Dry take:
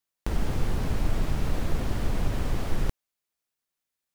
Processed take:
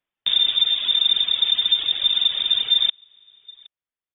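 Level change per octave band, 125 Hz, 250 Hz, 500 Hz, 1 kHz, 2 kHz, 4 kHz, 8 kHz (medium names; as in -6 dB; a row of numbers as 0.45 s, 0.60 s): under -25 dB, under -20 dB, under -10 dB, no reading, +5.0 dB, +31.0 dB, under -35 dB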